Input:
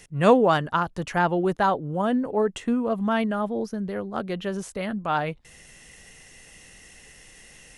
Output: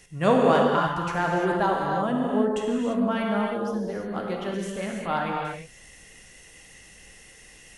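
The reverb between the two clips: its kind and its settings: non-linear reverb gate 0.37 s flat, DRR -1.5 dB; gain -4 dB

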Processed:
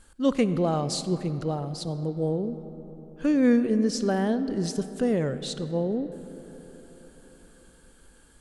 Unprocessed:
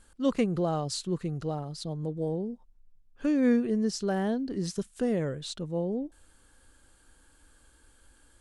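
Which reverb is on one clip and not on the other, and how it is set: digital reverb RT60 4.5 s, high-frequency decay 0.4×, pre-delay 15 ms, DRR 12 dB; gain +3.5 dB

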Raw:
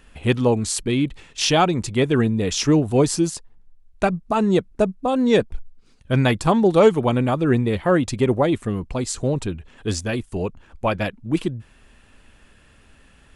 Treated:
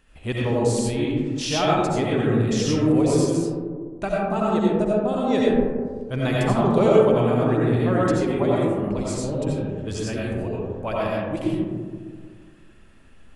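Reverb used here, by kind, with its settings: digital reverb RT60 1.8 s, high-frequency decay 0.25×, pre-delay 45 ms, DRR -5.5 dB; gain -9 dB

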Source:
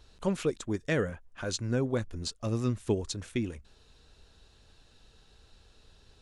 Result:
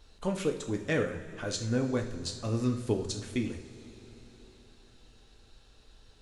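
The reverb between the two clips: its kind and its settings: two-slope reverb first 0.44 s, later 4.4 s, from -18 dB, DRR 3 dB; gain -1.5 dB

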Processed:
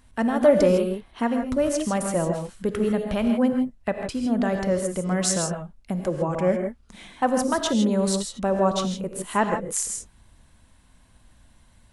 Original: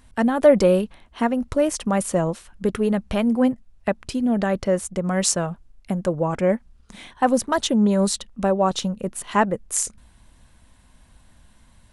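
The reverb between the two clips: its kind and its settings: non-linear reverb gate 0.18 s rising, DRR 4.5 dB; gain -3.5 dB

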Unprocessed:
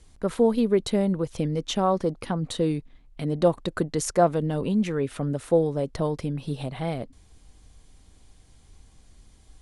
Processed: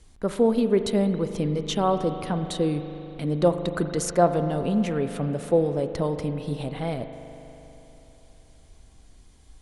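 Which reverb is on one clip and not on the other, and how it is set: spring tank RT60 3.5 s, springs 40 ms, chirp 75 ms, DRR 8.5 dB

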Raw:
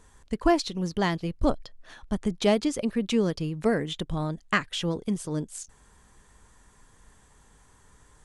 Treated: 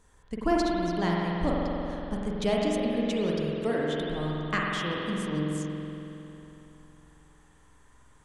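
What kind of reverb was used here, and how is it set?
spring tank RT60 3.2 s, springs 46 ms, chirp 75 ms, DRR -3.5 dB; gain -6 dB

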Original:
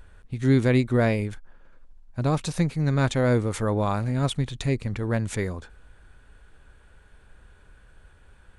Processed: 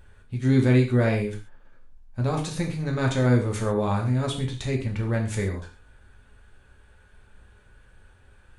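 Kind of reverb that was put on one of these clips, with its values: non-linear reverb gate 0.16 s falling, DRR 0 dB; gain -3.5 dB

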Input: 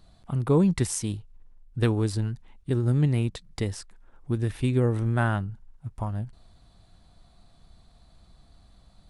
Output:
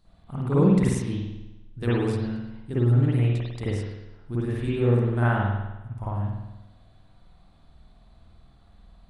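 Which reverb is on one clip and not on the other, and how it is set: spring tank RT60 1 s, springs 50 ms, chirp 65 ms, DRR -10 dB; gain -8.5 dB

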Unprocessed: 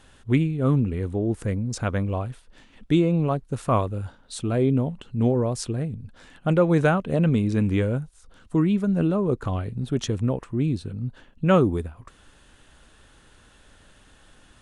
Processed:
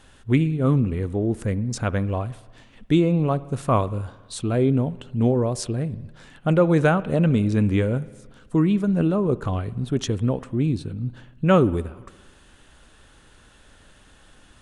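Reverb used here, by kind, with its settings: spring tank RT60 1.4 s, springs 57 ms, chirp 55 ms, DRR 18.5 dB; gain +1.5 dB

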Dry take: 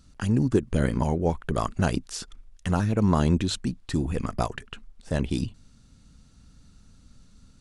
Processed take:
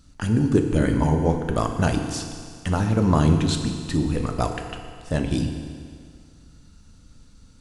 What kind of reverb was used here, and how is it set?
FDN reverb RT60 2.1 s, low-frequency decay 0.9×, high-frequency decay 0.95×, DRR 4 dB; gain +2 dB

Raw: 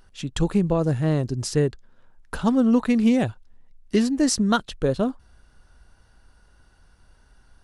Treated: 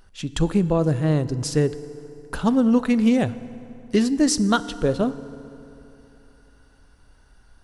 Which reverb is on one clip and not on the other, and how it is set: FDN reverb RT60 3.1 s, high-frequency decay 0.65×, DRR 14 dB; gain +1 dB

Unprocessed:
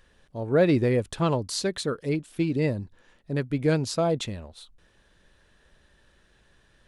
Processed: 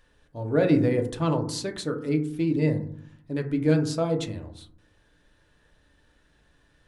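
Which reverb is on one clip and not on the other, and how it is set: FDN reverb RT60 0.61 s, low-frequency decay 1.55×, high-frequency decay 0.3×, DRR 4 dB; gain -3.5 dB

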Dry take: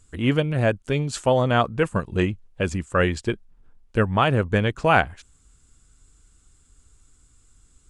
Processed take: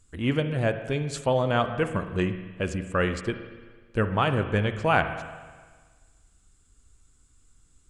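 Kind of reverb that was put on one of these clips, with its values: spring tank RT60 1.5 s, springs 38/60 ms, chirp 55 ms, DRR 8.5 dB; gain -4.5 dB

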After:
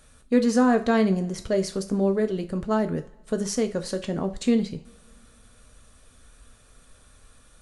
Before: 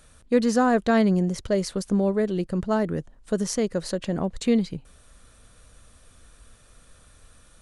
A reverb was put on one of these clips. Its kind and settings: two-slope reverb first 0.33 s, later 2.4 s, from -27 dB, DRR 6 dB; gain -1.5 dB

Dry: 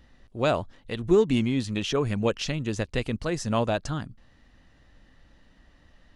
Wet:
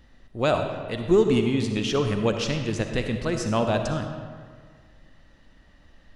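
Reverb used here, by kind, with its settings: digital reverb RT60 1.8 s, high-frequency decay 0.65×, pre-delay 20 ms, DRR 5 dB; gain +1 dB

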